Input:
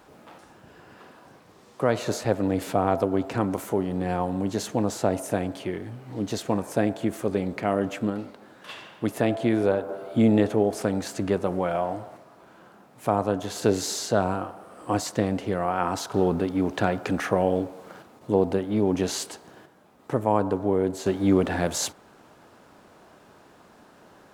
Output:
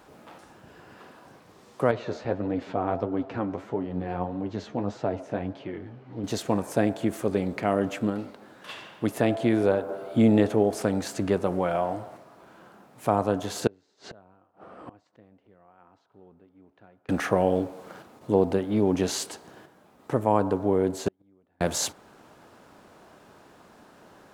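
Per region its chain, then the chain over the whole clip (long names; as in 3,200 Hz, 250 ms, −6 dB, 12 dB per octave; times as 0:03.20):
0:01.91–0:06.24: high-frequency loss of the air 200 metres + flanger 1.6 Hz, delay 6.2 ms, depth 8 ms, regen +38%
0:13.67–0:17.09: low-pass filter 2,900 Hz + gate with flip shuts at −29 dBFS, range −31 dB
0:21.08–0:21.61: high-shelf EQ 2,700 Hz −10.5 dB + gate with flip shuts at −21 dBFS, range −42 dB
whole clip: no processing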